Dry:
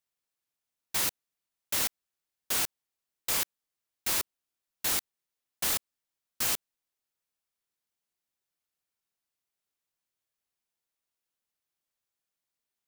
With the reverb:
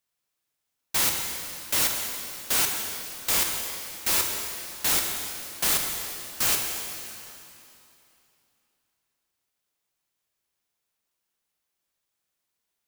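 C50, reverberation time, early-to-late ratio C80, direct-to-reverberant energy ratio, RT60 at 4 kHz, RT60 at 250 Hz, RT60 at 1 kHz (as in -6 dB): 3.0 dB, 2.9 s, 4.0 dB, 1.5 dB, 2.7 s, 2.9 s, 2.9 s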